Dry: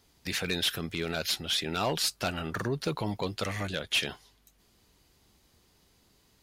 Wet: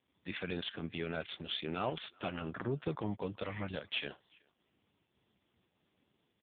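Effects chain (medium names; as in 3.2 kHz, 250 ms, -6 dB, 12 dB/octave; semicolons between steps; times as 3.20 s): speakerphone echo 380 ms, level -25 dB; volume shaper 95 bpm, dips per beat 1, -7 dB, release 127 ms; trim -4 dB; AMR-NB 5.15 kbps 8 kHz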